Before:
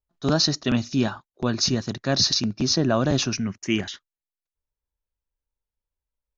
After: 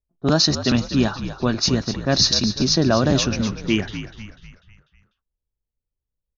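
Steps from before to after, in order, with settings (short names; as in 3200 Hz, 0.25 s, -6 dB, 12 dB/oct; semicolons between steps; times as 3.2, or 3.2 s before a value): low-pass opened by the level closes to 480 Hz, open at -16.5 dBFS; frequency-shifting echo 0.247 s, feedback 48%, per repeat -60 Hz, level -11 dB; gain +3.5 dB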